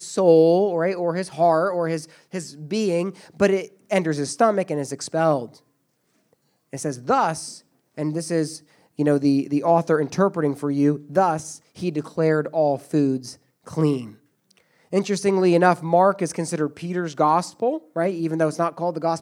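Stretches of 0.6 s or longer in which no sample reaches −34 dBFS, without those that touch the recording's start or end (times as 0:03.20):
0:05.46–0:06.73
0:14.10–0:14.92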